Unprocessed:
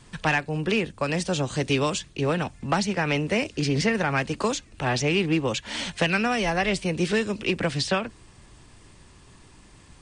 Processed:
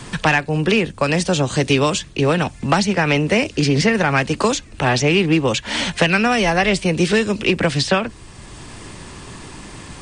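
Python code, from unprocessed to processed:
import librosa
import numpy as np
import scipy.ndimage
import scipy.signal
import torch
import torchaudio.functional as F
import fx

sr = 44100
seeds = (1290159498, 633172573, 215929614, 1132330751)

y = fx.band_squash(x, sr, depth_pct=40)
y = y * librosa.db_to_amplitude(7.5)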